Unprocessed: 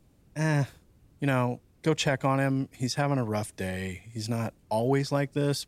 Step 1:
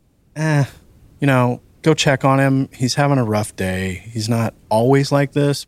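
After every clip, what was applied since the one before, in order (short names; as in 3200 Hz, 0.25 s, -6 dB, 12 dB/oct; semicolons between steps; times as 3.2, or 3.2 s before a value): AGC gain up to 9 dB; gain +3 dB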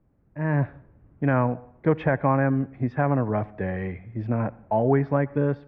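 LPF 1800 Hz 24 dB/oct; on a send at -21 dB: reverb RT60 0.70 s, pre-delay 65 ms; on the sum: gain -7 dB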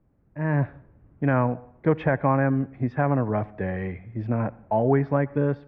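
nothing audible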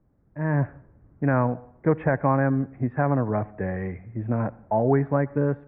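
LPF 2100 Hz 24 dB/oct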